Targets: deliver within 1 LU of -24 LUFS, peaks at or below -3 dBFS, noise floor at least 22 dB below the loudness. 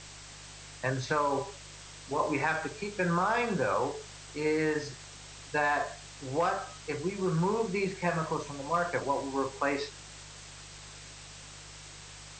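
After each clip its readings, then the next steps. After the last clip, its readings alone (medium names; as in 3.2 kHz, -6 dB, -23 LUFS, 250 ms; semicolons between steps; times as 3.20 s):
hum 50 Hz; highest harmonic 150 Hz; hum level -51 dBFS; noise floor -48 dBFS; noise floor target -54 dBFS; loudness -31.5 LUFS; peak level -15.0 dBFS; loudness target -24.0 LUFS
-> de-hum 50 Hz, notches 3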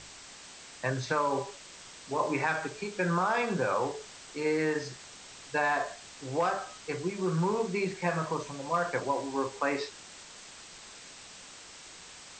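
hum not found; noise floor -50 dBFS; noise floor target -54 dBFS
-> noise reduction 6 dB, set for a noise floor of -50 dBFS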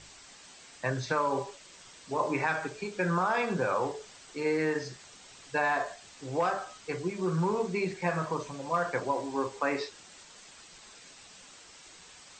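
noise floor -53 dBFS; noise floor target -54 dBFS
-> noise reduction 6 dB, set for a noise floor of -53 dBFS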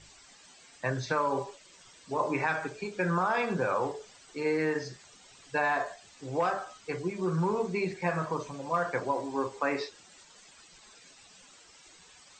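noise floor -56 dBFS; loudness -31.5 LUFS; peak level -15.0 dBFS; loudness target -24.0 LUFS
-> trim +7.5 dB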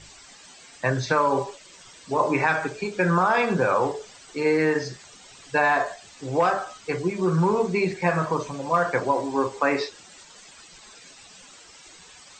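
loudness -24.0 LUFS; peak level -7.5 dBFS; noise floor -49 dBFS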